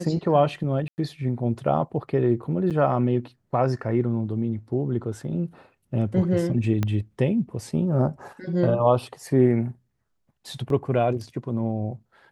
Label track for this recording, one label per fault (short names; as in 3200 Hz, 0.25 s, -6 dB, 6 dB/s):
0.880000	0.980000	gap 99 ms
2.700000	2.710000	gap 7.7 ms
6.830000	6.830000	pop -12 dBFS
10.700000	10.700000	gap 2.1 ms